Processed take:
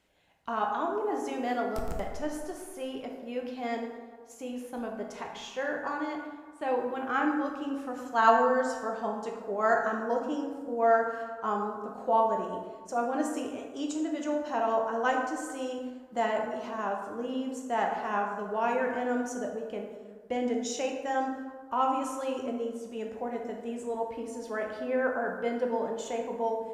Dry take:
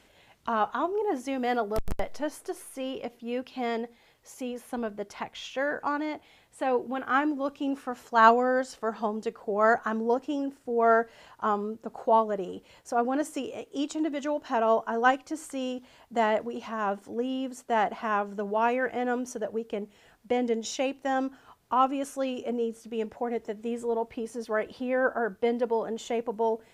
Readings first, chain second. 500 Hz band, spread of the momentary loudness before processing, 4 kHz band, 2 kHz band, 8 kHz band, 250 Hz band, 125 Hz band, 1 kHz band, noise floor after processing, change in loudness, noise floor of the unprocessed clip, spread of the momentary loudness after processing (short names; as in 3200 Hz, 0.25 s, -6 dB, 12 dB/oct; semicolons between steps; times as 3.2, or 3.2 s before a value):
-2.0 dB, 11 LU, -3.5 dB, -2.5 dB, -0.5 dB, -2.0 dB, n/a, -2.0 dB, -48 dBFS, -2.5 dB, -60 dBFS, 12 LU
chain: gate -48 dBFS, range -7 dB; dynamic EQ 7100 Hz, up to +5 dB, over -59 dBFS, Q 2.3; plate-style reverb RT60 1.5 s, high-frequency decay 0.45×, DRR 0.5 dB; gain -5.5 dB